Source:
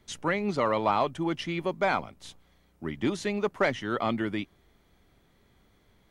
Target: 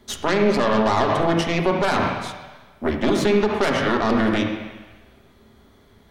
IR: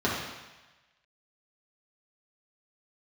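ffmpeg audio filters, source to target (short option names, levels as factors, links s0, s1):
-filter_complex "[0:a]aeval=exprs='0.224*(cos(1*acos(clip(val(0)/0.224,-1,1)))-cos(1*PI/2))+0.0562*(cos(6*acos(clip(val(0)/0.224,-1,1)))-cos(6*PI/2))':c=same,asplit=2[s0][s1];[1:a]atrim=start_sample=2205,asetrate=41013,aresample=44100[s2];[s1][s2]afir=irnorm=-1:irlink=0,volume=0.2[s3];[s0][s3]amix=inputs=2:normalize=0,alimiter=level_in=5.96:limit=0.891:release=50:level=0:latency=1,volume=0.376"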